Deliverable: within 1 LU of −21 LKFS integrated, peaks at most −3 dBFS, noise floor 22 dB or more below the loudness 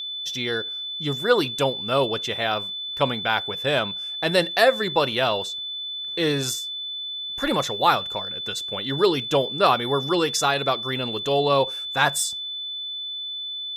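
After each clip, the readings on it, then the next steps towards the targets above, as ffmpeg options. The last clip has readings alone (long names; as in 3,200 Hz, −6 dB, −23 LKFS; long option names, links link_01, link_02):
interfering tone 3,500 Hz; level of the tone −29 dBFS; integrated loudness −23.5 LKFS; sample peak −3.5 dBFS; target loudness −21.0 LKFS
→ -af "bandreject=frequency=3500:width=30"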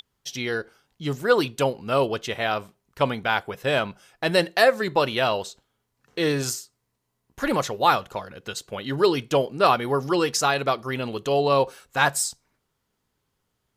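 interfering tone none found; integrated loudness −24.0 LKFS; sample peak −4.0 dBFS; target loudness −21.0 LKFS
→ -af "volume=3dB,alimiter=limit=-3dB:level=0:latency=1"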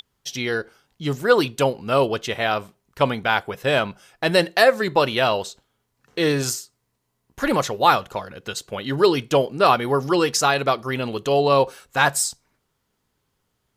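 integrated loudness −21.0 LKFS; sample peak −3.0 dBFS; background noise floor −74 dBFS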